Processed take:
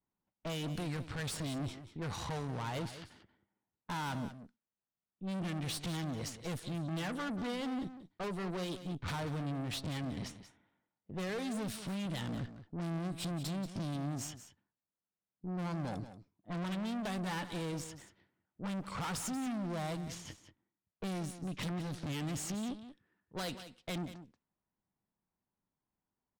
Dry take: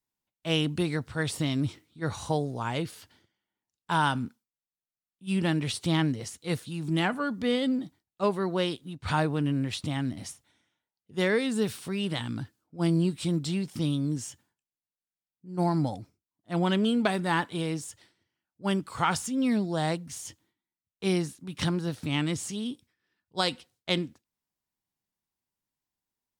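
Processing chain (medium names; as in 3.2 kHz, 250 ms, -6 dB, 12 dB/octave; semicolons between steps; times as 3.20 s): level-controlled noise filter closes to 1.3 kHz, open at -25.5 dBFS; peaking EQ 190 Hz +5 dB 0.33 oct; compression 2:1, threshold -37 dBFS, peak gain reduction 10 dB; valve stage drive 43 dB, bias 0.7; delay 184 ms -12.5 dB; trim +7 dB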